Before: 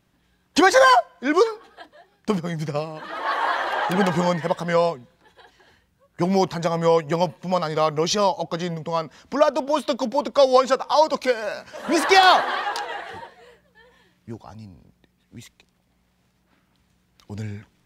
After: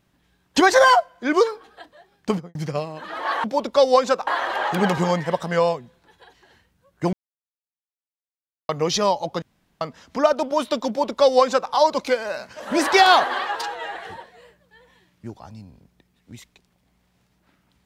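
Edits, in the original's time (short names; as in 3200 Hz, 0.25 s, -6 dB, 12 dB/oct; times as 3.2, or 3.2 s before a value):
2.3–2.55 studio fade out
6.3–7.86 mute
8.59–8.98 room tone
10.05–10.88 copy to 3.44
12.73–12.99 stretch 1.5×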